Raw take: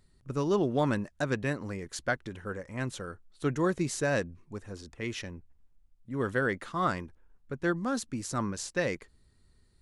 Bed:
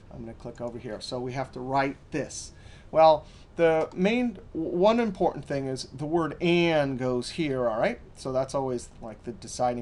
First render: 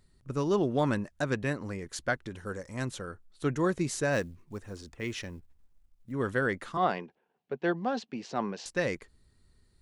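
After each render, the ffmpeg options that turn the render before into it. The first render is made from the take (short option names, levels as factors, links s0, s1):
-filter_complex "[0:a]asettb=1/sr,asplit=3[s0][s1][s2];[s0]atrim=end=2.364[s3];[s1]atrim=start=2.36:end=2.85,asetpts=PTS-STARTPTS,afade=t=in:d=0.004:c=qsin,afade=t=out:st=0.486:d=0.004:c=qsin,highshelf=f=3500:t=q:w=1.5:g=7[s4];[s2]atrim=start=2.846[s5];[s3][s4]acrossfade=d=0.004:c1=hsin:c2=qsin[s6];[s6][s5]acrossfade=d=0.004:c1=qsin:c2=hsin,asettb=1/sr,asplit=3[s7][s8][s9];[s7]atrim=end=4.134[s10];[s8]atrim=start=4.13:end=6.12,asetpts=PTS-STARTPTS,afade=t=in:d=0.004:c=qsin,afade=t=out:st=1.986:d=0.004:c=qsin,acrusher=bits=8:mode=log:mix=0:aa=0.000001[s11];[s9]atrim=start=6.116[s12];[s10][s11]acrossfade=d=0.004:c1=hsin:c2=qsin[s13];[s13][s12]acrossfade=d=0.004:c1=qsin:c2=hsin,asettb=1/sr,asplit=3[s14][s15][s16];[s14]atrim=end=6.774[s17];[s15]atrim=start=6.77:end=8.66,asetpts=PTS-STARTPTS,afade=t=in:d=0.004:c=qsin,afade=t=out:st=1.886:d=0.004:c=qsin,highpass=f=170:w=0.5412,highpass=f=170:w=1.3066,equalizer=f=290:t=q:w=4:g=-6,equalizer=f=420:t=q:w=4:g=6,equalizer=f=750:t=q:w=4:g=10,equalizer=f=1300:t=q:w=4:g=-6,equalizer=f=2800:t=q:w=4:g=6,lowpass=f=4700:w=0.5412,lowpass=f=4700:w=1.3066[s18];[s16]atrim=start=8.656[s19];[s17][s18]acrossfade=d=0.004:c1=hsin:c2=qsin[s20];[s20][s19]acrossfade=d=0.004:c1=qsin:c2=hsin"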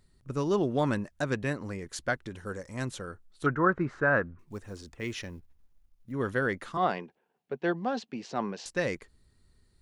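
-filter_complex "[0:a]asettb=1/sr,asplit=3[s0][s1][s2];[s0]atrim=end=3.464[s3];[s1]atrim=start=3.46:end=4.39,asetpts=PTS-STARTPTS,afade=t=in:d=0.004:c=qsin,afade=t=out:st=0.926:d=0.004:c=qsin,lowpass=f=1400:t=q:w=4.6[s4];[s2]atrim=start=4.386[s5];[s3][s4]acrossfade=d=0.004:c1=hsin:c2=qsin[s6];[s6][s5]acrossfade=d=0.004:c1=qsin:c2=hsin,asettb=1/sr,asplit=3[s7][s8][s9];[s7]atrim=end=5.134[s10];[s8]atrim=start=5.13:end=6.64,asetpts=PTS-STARTPTS,afade=t=in:d=0.004:c=qsin,afade=t=out:st=1.506:d=0.004:c=qsin,bandreject=f=7900:w=7.5[s11];[s9]atrim=start=6.636[s12];[s10][s11]acrossfade=d=0.004:c1=hsin:c2=qsin[s13];[s13][s12]acrossfade=d=0.004:c1=qsin:c2=hsin"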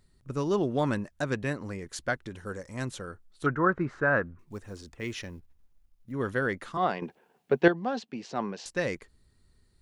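-filter_complex "[0:a]asplit=3[s0][s1][s2];[s0]atrim=end=7.022[s3];[s1]atrim=start=7.018:end=7.682,asetpts=PTS-STARTPTS,volume=3.35[s4];[s2]atrim=start=7.678[s5];[s3][s4]acrossfade=d=0.004:c1=hsin:c2=hsin[s6];[s6][s5]acrossfade=d=0.004:c1=hsin:c2=hsin"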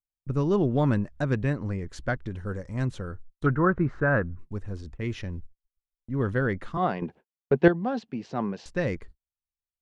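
-af "agate=range=0.00282:threshold=0.00282:ratio=16:detection=peak,aemphasis=mode=reproduction:type=bsi"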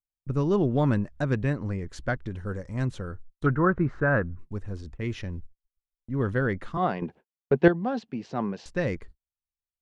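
-af anull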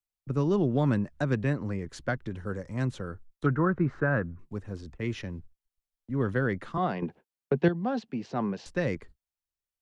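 -filter_complex "[0:a]acrossover=split=240|3000[s0][s1][s2];[s1]acompressor=threshold=0.0562:ratio=4[s3];[s0][s3][s2]amix=inputs=3:normalize=0,acrossover=split=100|1400[s4][s5][s6];[s4]alimiter=level_in=10:limit=0.0631:level=0:latency=1:release=487,volume=0.1[s7];[s7][s5][s6]amix=inputs=3:normalize=0"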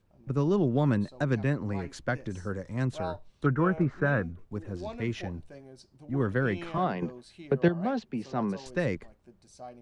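-filter_complex "[1:a]volume=0.119[s0];[0:a][s0]amix=inputs=2:normalize=0"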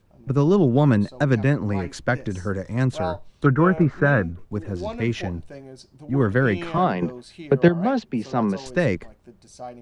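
-af "volume=2.51"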